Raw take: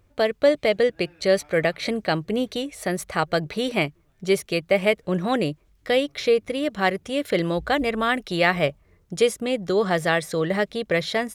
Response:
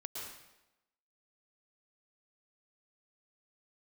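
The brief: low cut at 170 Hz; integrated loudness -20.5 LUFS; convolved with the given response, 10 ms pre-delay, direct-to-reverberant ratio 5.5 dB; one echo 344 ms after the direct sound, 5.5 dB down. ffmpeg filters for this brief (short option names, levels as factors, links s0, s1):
-filter_complex "[0:a]highpass=170,aecho=1:1:344:0.531,asplit=2[s0][s1];[1:a]atrim=start_sample=2205,adelay=10[s2];[s1][s2]afir=irnorm=-1:irlink=0,volume=0.596[s3];[s0][s3]amix=inputs=2:normalize=0,volume=1.12"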